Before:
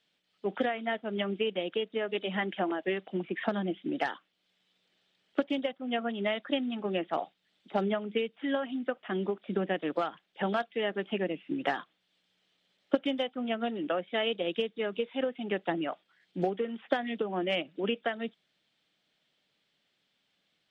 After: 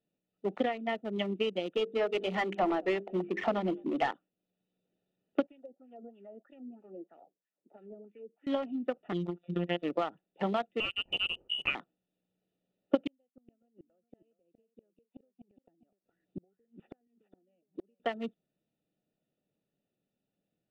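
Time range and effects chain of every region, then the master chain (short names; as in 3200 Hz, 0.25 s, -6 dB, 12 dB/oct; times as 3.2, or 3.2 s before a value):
1.77–4.11 notches 50/100/150/200/250/300/350/400/450/500 Hz + overdrive pedal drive 16 dB, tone 1300 Hz, clips at -16.5 dBFS + echo 0.211 s -22.5 dB
5.47–8.47 LFO band-pass sine 3.1 Hz 360–2200 Hz + dynamic EQ 240 Hz, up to +5 dB, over -52 dBFS, Q 0.72 + compressor 2.5:1, threshold -45 dBFS
9.12–9.83 bell 3900 Hz +7.5 dB 2.7 oct + robotiser 174 Hz
10.8–11.75 sample sorter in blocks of 8 samples + notch 620 Hz, Q 20 + inverted band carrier 3200 Hz
13.07–18 flipped gate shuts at -28 dBFS, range -40 dB + echo 0.415 s -12 dB
whole clip: Wiener smoothing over 41 samples; notch 1600 Hz, Q 5.4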